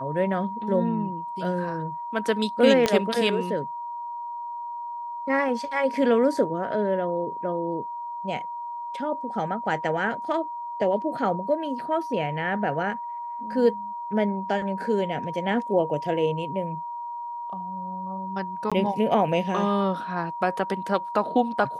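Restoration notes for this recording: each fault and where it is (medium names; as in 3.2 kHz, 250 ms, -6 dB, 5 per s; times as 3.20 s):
whine 950 Hz -31 dBFS
2.86 s: pop -8 dBFS
18.70–18.72 s: dropout 16 ms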